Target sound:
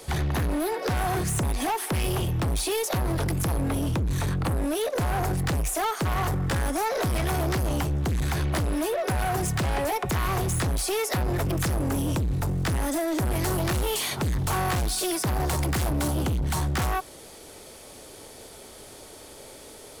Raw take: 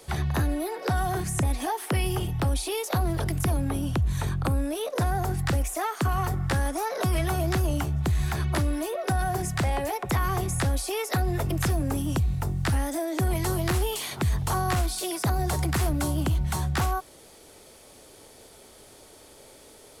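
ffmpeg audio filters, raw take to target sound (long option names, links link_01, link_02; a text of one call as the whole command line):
ffmpeg -i in.wav -af "asoftclip=type=hard:threshold=-29dB,volume=5.5dB" out.wav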